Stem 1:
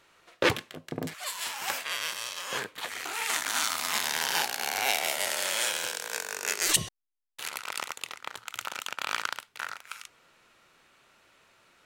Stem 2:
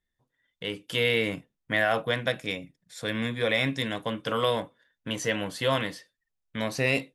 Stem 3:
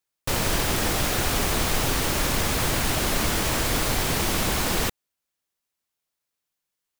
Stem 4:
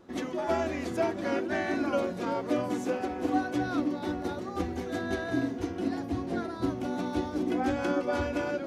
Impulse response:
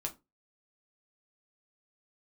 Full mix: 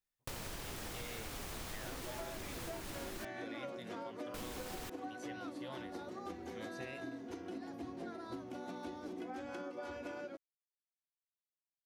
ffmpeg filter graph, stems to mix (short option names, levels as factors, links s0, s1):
-filter_complex "[1:a]volume=0.168[s0];[2:a]volume=0.282,asplit=3[s1][s2][s3];[s1]atrim=end=3.25,asetpts=PTS-STARTPTS,afade=t=out:st=3.246:d=0.004:c=hsin[s4];[s2]atrim=start=3.25:end=4.34,asetpts=PTS-STARTPTS,volume=0[s5];[s3]atrim=start=4.34,asetpts=PTS-STARTPTS,afade=t=in:d=0.004:c=hsin[s6];[s4][s5][s6]concat=n=3:v=0:a=1[s7];[3:a]highpass=f=200:p=1,bandreject=f=50:t=h:w=6,bandreject=f=100:t=h:w=6,bandreject=f=150:t=h:w=6,bandreject=f=200:t=h:w=6,bandreject=f=250:t=h:w=6,bandreject=f=300:t=h:w=6,adelay=1700,volume=0.596[s8];[s0][s7][s8]amix=inputs=3:normalize=0,acompressor=threshold=0.00794:ratio=6"